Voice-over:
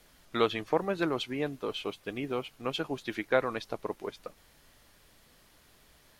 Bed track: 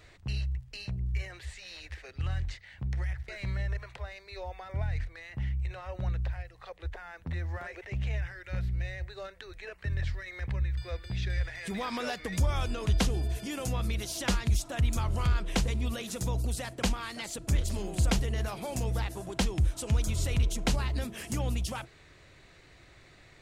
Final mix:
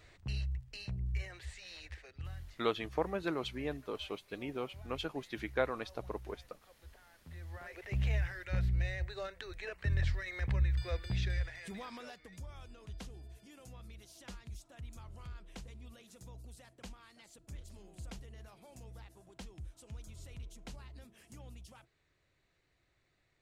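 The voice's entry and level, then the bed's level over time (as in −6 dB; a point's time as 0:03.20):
2.25 s, −6.0 dB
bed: 0:01.88 −4.5 dB
0:02.62 −18.5 dB
0:07.18 −18.5 dB
0:07.99 0 dB
0:11.11 0 dB
0:12.42 −20.5 dB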